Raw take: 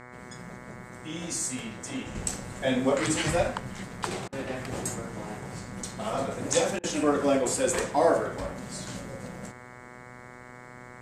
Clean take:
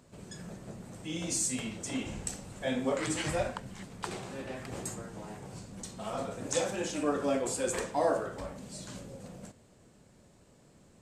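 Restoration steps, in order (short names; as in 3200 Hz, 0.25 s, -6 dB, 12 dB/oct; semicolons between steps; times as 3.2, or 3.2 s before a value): de-hum 123.7 Hz, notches 18; interpolate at 4.28/6.79, 44 ms; gain 0 dB, from 2.15 s -6 dB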